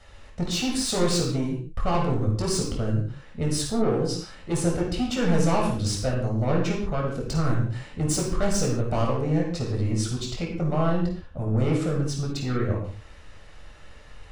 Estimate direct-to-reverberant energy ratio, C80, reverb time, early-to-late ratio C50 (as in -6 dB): -2.0 dB, 7.0 dB, no single decay rate, 3.0 dB